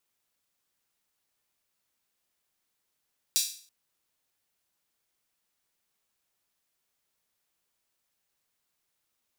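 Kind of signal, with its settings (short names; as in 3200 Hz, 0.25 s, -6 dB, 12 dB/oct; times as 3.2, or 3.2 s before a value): open hi-hat length 0.33 s, high-pass 4400 Hz, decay 0.46 s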